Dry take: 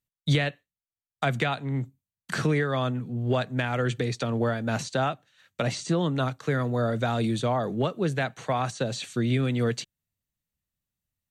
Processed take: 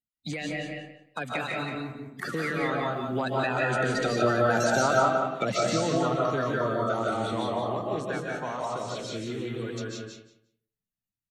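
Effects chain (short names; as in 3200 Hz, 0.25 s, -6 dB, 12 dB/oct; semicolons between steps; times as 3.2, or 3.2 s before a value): bin magnitudes rounded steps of 30 dB; Doppler pass-by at 4.76, 16 m/s, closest 17 m; low shelf 230 Hz -6.5 dB; on a send: feedback echo 0.177 s, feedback 16%, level -6 dB; on the sum: digital reverb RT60 0.64 s, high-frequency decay 0.45×, pre-delay 0.11 s, DRR -2 dB; in parallel at +2 dB: compressor, threshold -40 dBFS, peak gain reduction 19.5 dB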